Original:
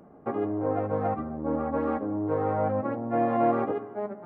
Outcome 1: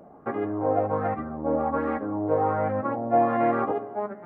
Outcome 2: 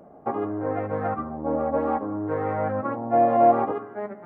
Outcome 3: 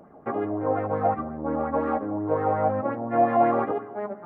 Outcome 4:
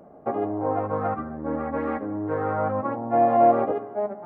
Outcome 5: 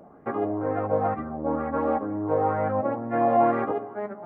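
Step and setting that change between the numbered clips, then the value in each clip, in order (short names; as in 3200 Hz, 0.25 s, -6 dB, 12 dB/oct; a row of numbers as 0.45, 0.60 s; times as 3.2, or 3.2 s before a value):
LFO bell, rate: 1.3, 0.6, 5.6, 0.27, 2.1 Hz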